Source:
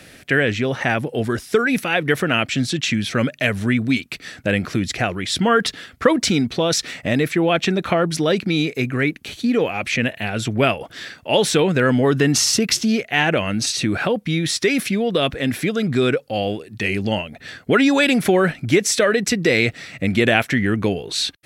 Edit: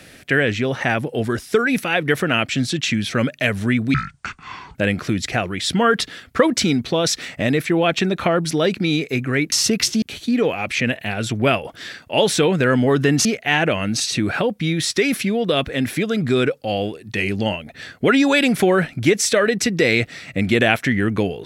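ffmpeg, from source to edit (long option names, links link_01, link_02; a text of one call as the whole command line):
ffmpeg -i in.wav -filter_complex "[0:a]asplit=6[link_01][link_02][link_03][link_04][link_05][link_06];[link_01]atrim=end=3.944[link_07];[link_02]atrim=start=3.94:end=4.41,asetpts=PTS-STARTPTS,asetrate=25578,aresample=44100,atrim=end_sample=35736,asetpts=PTS-STARTPTS[link_08];[link_03]atrim=start=4.406:end=9.182[link_09];[link_04]atrim=start=12.408:end=12.912[link_10];[link_05]atrim=start=9.178:end=12.412[link_11];[link_06]atrim=start=12.908[link_12];[link_07][link_08]acrossfade=duration=0.004:curve1=hsin:curve2=hsin[link_13];[link_13][link_09]acrossfade=duration=0.004:curve1=hsin:curve2=hsin[link_14];[link_14][link_10]acrossfade=duration=0.004:curve1=hsin:curve2=hsin[link_15];[link_15][link_11]acrossfade=duration=0.004:curve1=hsin:curve2=hsin[link_16];[link_16][link_12]acrossfade=duration=0.004:curve1=hsin:curve2=hsin" out.wav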